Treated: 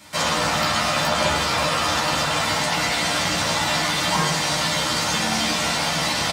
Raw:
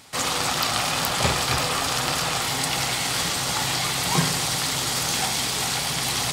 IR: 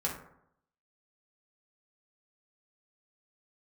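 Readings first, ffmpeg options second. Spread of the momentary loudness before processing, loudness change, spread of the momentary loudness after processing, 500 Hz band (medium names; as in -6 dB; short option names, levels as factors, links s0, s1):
2 LU, +2.0 dB, 1 LU, +5.5 dB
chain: -filter_complex "[0:a]acrossover=split=250|6900[s0][s1][s2];[s0]acompressor=threshold=0.0112:ratio=4[s3];[s1]acompressor=threshold=0.0562:ratio=4[s4];[s2]acompressor=threshold=0.00631:ratio=4[s5];[s3][s4][s5]amix=inputs=3:normalize=0,asplit=2[s6][s7];[s7]aeval=exprs='sgn(val(0))*max(abs(val(0))-0.00531,0)':c=same,volume=0.266[s8];[s6][s8]amix=inputs=2:normalize=0,asplit=2[s9][s10];[s10]adelay=13,volume=0.794[s11];[s9][s11]amix=inputs=2:normalize=0[s12];[1:a]atrim=start_sample=2205,asetrate=52920,aresample=44100[s13];[s12][s13]afir=irnorm=-1:irlink=0"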